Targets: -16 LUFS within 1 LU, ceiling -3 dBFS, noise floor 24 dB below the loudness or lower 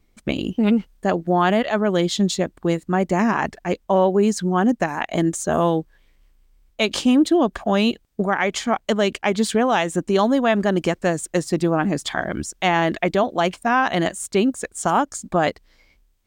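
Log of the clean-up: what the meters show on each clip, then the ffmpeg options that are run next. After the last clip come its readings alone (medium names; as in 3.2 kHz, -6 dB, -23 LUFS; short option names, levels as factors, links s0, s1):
loudness -21.0 LUFS; peak level -7.0 dBFS; loudness target -16.0 LUFS
-> -af "volume=1.78,alimiter=limit=0.708:level=0:latency=1"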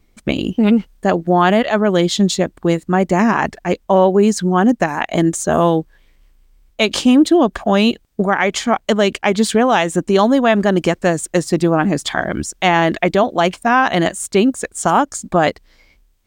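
loudness -16.0 LUFS; peak level -3.0 dBFS; noise floor -57 dBFS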